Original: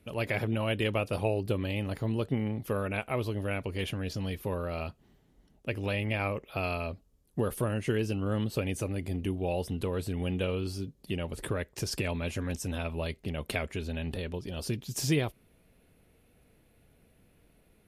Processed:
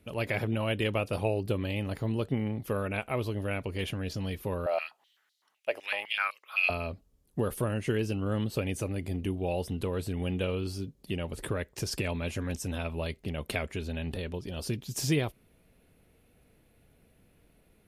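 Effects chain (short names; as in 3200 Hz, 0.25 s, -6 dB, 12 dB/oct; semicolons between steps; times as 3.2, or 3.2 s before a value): 4.66–6.7 stepped high-pass 7.9 Hz 650–4200 Hz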